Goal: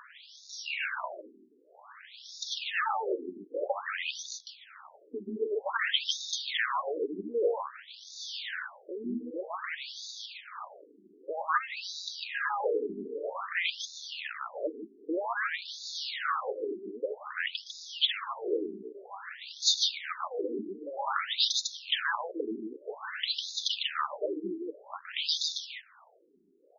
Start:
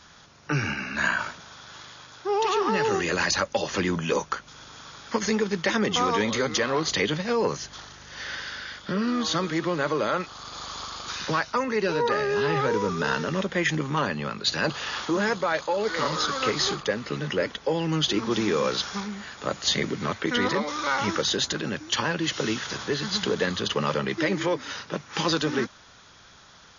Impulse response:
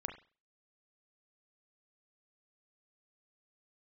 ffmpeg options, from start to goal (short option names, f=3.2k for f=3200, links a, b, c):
-filter_complex "[0:a]acrusher=bits=7:dc=4:mix=0:aa=0.000001,lowshelf=f=230:g=-8,acompressor=mode=upward:threshold=-37dB:ratio=2.5,asubboost=boost=9.5:cutoff=74,asplit=2[a][b];[b]aecho=0:1:150:0.708[c];[a][c]amix=inputs=2:normalize=0,afftfilt=real='re*between(b*sr/1024,290*pow(5000/290,0.5+0.5*sin(2*PI*0.52*pts/sr))/1.41,290*pow(5000/290,0.5+0.5*sin(2*PI*0.52*pts/sr))*1.41)':imag='im*between(b*sr/1024,290*pow(5000/290,0.5+0.5*sin(2*PI*0.52*pts/sr))/1.41,290*pow(5000/290,0.5+0.5*sin(2*PI*0.52*pts/sr))*1.41)':win_size=1024:overlap=0.75"